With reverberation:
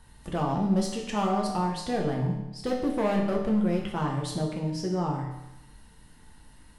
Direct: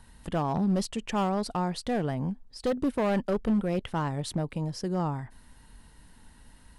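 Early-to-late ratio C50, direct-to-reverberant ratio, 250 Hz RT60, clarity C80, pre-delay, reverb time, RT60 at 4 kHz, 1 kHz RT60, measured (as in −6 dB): 4.5 dB, −1.0 dB, 0.95 s, 6.5 dB, 7 ms, 0.90 s, 0.85 s, 0.90 s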